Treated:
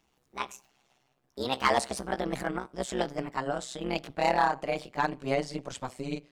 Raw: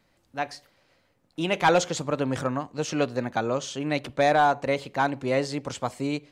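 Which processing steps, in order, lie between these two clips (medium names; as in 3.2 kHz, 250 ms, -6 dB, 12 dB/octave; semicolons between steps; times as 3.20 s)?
pitch bend over the whole clip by +6.5 st ending unshifted; AM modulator 130 Hz, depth 85%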